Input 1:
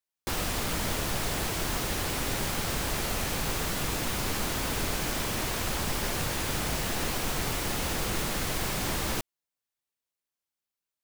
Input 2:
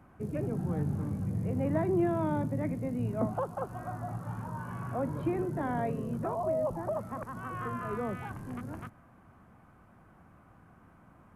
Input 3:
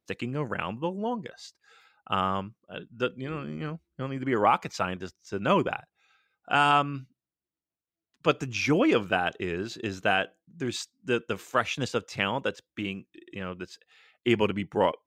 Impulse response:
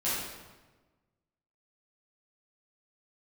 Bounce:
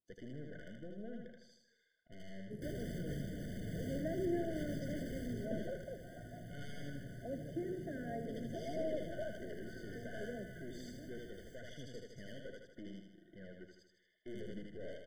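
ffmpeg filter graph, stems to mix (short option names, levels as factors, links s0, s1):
-filter_complex "[0:a]asoftclip=type=tanh:threshold=0.0299,adelay=2350,volume=0.398,afade=t=out:st=5.11:d=0.64:silence=0.281838[s0];[1:a]highpass=140,adelay=2300,volume=0.335,asplit=2[s1][s2];[s2]volume=0.282[s3];[2:a]aeval=exprs='(tanh(28.2*val(0)+0.7)-tanh(0.7))/28.2':c=same,volume=0.316,asplit=2[s4][s5];[s5]volume=0.398[s6];[s0][s4]amix=inputs=2:normalize=0,highshelf=f=2000:g=-10.5,alimiter=level_in=5.96:limit=0.0631:level=0:latency=1:release=12,volume=0.168,volume=1[s7];[s3][s6]amix=inputs=2:normalize=0,aecho=0:1:78|156|234|312|390|468|546|624:1|0.53|0.281|0.149|0.0789|0.0418|0.0222|0.0117[s8];[s1][s7][s8]amix=inputs=3:normalize=0,afftfilt=real='re*eq(mod(floor(b*sr/1024/730),2),0)':imag='im*eq(mod(floor(b*sr/1024/730),2),0)':win_size=1024:overlap=0.75"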